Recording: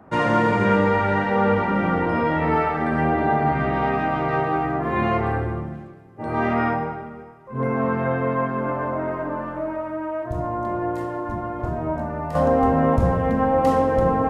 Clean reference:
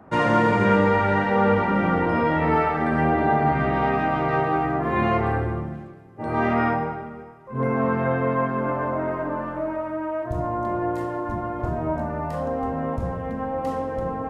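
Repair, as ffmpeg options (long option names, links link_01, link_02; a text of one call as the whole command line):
ffmpeg -i in.wav -af "asetnsamples=nb_out_samples=441:pad=0,asendcmd='12.35 volume volume -8.5dB',volume=0dB" out.wav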